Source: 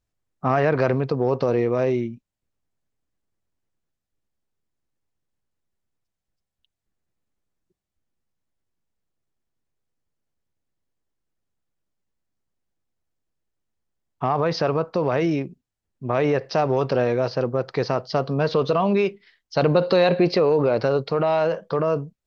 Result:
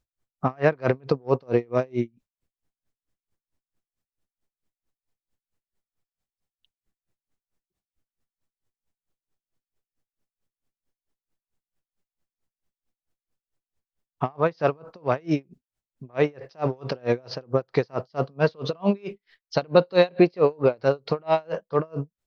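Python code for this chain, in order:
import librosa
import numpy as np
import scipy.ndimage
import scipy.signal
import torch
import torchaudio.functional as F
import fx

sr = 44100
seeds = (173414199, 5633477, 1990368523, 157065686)

y = x * 10.0 ** (-35 * (0.5 - 0.5 * np.cos(2.0 * np.pi * 4.5 * np.arange(len(x)) / sr)) / 20.0)
y = F.gain(torch.from_numpy(y), 3.5).numpy()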